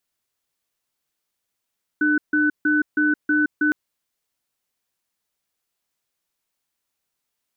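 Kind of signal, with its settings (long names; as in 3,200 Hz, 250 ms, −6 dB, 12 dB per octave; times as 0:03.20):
tone pair in a cadence 301 Hz, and 1,500 Hz, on 0.17 s, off 0.15 s, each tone −18.5 dBFS 1.71 s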